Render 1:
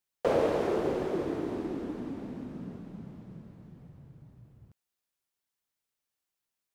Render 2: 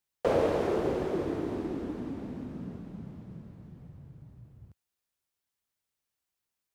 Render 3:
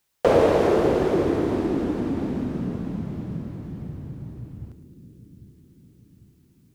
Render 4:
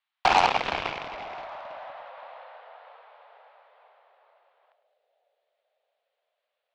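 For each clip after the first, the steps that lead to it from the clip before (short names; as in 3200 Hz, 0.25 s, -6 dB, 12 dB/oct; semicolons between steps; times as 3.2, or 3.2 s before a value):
bell 73 Hz +6 dB 1.4 oct
in parallel at 0 dB: compressor, threshold -38 dBFS, peak gain reduction 15.5 dB; on the sum: split-band echo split 320 Hz, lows 0.798 s, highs 0.109 s, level -12.5 dB; gain +7 dB
wow and flutter 71 cents; mistuned SSB +260 Hz 490–3600 Hz; added harmonics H 7 -13 dB, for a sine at -8 dBFS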